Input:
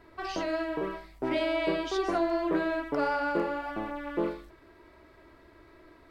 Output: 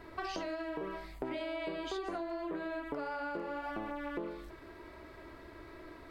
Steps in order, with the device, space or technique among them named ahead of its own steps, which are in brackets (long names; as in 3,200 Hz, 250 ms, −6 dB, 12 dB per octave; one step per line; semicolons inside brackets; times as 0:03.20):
0:01.14–0:03.34: notch filter 5,600 Hz, Q 5.2
serial compression, leveller first (downward compressor 2 to 1, threshold −31 dBFS, peak gain reduction 5 dB; downward compressor 6 to 1, threshold −41 dBFS, peak gain reduction 13 dB)
level +4.5 dB